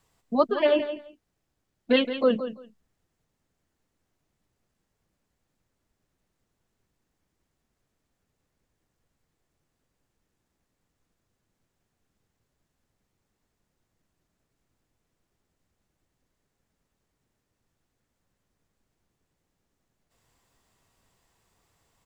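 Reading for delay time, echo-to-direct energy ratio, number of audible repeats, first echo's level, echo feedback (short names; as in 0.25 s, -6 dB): 0.169 s, -11.0 dB, 2, -11.0 dB, 17%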